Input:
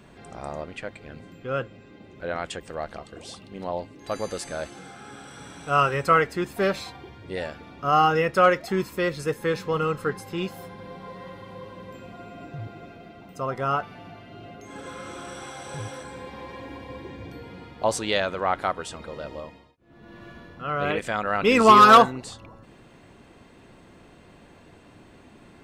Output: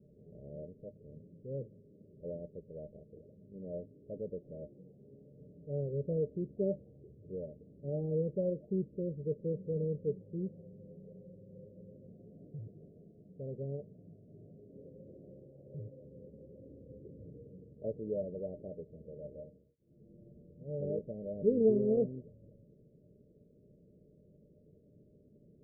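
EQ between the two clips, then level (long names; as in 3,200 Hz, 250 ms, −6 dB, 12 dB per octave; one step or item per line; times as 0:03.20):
dynamic equaliser 270 Hz, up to +3 dB, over −36 dBFS, Q 0.95
Chebyshev low-pass with heavy ripple 620 Hz, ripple 9 dB
−6.0 dB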